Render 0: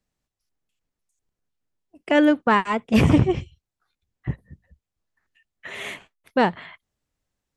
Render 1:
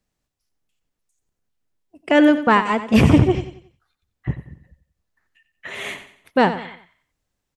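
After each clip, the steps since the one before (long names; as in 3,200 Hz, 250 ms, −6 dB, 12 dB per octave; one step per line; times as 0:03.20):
repeating echo 91 ms, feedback 38%, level −12 dB
level +3 dB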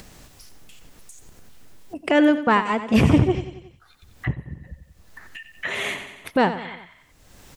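upward compression, threshold −16 dBFS
level −3 dB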